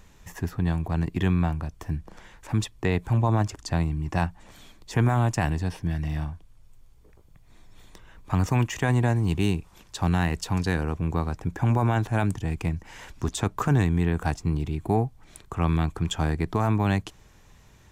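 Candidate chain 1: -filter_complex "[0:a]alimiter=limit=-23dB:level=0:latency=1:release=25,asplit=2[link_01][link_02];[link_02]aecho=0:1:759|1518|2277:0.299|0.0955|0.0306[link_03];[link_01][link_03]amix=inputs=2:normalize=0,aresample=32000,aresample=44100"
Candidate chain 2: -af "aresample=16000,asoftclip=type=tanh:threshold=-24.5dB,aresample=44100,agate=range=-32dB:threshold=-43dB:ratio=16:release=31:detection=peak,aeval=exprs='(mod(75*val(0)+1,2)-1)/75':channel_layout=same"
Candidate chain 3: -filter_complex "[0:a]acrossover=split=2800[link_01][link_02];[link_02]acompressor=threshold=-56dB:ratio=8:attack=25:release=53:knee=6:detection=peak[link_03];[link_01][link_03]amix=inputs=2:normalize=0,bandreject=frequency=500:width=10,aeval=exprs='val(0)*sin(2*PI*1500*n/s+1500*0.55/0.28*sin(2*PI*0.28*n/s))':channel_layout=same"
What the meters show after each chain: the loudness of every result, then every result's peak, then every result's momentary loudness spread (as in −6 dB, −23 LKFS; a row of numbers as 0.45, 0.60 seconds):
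−33.5, −42.5, −27.0 LKFS; −20.5, −37.5, −12.0 dBFS; 11, 6, 10 LU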